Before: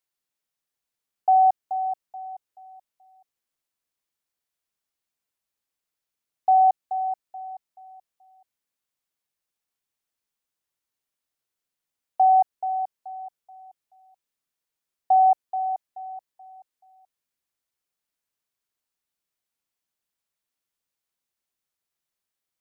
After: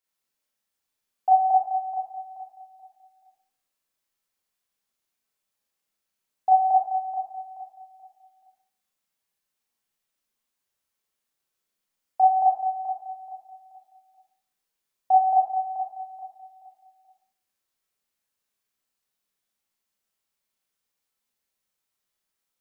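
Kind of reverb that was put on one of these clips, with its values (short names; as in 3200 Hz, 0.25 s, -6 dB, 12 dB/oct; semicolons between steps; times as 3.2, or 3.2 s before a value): Schroeder reverb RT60 0.53 s, combs from 29 ms, DRR -5.5 dB; gain -3 dB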